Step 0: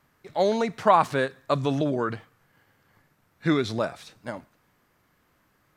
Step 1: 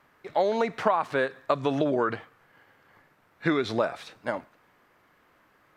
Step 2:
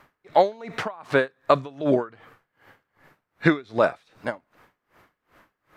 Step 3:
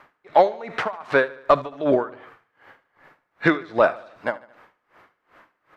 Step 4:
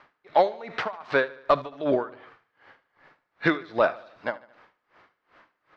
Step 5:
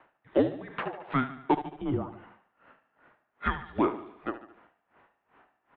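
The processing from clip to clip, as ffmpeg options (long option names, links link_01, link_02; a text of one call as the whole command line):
ffmpeg -i in.wav -af "bass=frequency=250:gain=-10,treble=frequency=4000:gain=-10,acompressor=threshold=-26dB:ratio=10,volume=6dB" out.wav
ffmpeg -i in.wav -af "lowshelf=frequency=70:gain=6,aeval=exprs='val(0)*pow(10,-27*(0.5-0.5*cos(2*PI*2.6*n/s))/20)':channel_layout=same,volume=8dB" out.wav
ffmpeg -i in.wav -filter_complex "[0:a]asplit=2[link_01][link_02];[link_02]highpass=frequency=720:poles=1,volume=12dB,asoftclip=type=tanh:threshold=-1.5dB[link_03];[link_01][link_03]amix=inputs=2:normalize=0,lowpass=frequency=1800:poles=1,volume=-6dB,aecho=1:1:74|148|222|296:0.106|0.0551|0.0286|0.0149" out.wav
ffmpeg -i in.wav -af "lowpass=frequency=4800:width_type=q:width=1.6,volume=-4.5dB" out.wav
ffmpeg -i in.wav -filter_complex "[0:a]asplit=2[link_01][link_02];[link_02]aecho=0:1:73|146|219|292|365:0.237|0.121|0.0617|0.0315|0.016[link_03];[link_01][link_03]amix=inputs=2:normalize=0,highpass=frequency=390:width_type=q:width=0.5412,highpass=frequency=390:width_type=q:width=1.307,lowpass=frequency=3400:width_type=q:width=0.5176,lowpass=frequency=3400:width_type=q:width=0.7071,lowpass=frequency=3400:width_type=q:width=1.932,afreqshift=-270,volume=-4dB" out.wav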